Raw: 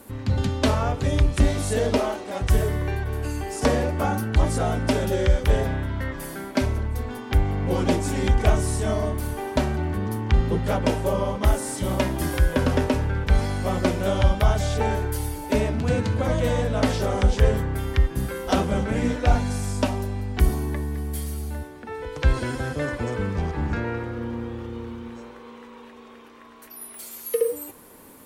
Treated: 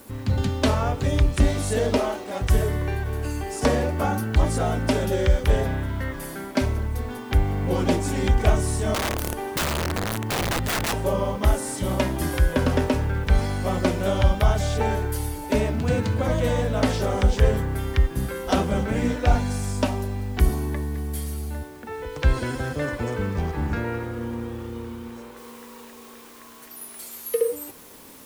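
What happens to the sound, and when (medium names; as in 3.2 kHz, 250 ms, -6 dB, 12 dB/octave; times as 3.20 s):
8.94–10.93 s: integer overflow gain 19.5 dB
25.37 s: noise floor step -57 dB -50 dB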